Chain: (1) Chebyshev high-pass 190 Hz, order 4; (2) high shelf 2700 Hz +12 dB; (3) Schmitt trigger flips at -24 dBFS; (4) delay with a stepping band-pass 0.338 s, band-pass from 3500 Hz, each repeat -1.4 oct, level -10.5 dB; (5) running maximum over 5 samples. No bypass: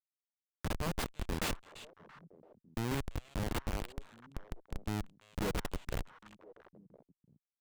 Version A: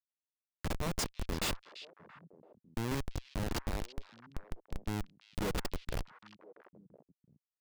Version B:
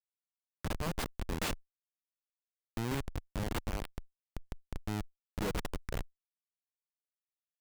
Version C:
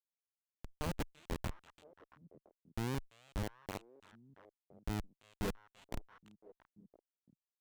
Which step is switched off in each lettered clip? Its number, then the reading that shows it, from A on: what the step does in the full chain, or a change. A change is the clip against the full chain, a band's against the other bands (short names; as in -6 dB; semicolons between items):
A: 5, distortion -4 dB; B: 4, momentary loudness spread change -7 LU; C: 2, 4 kHz band -3.0 dB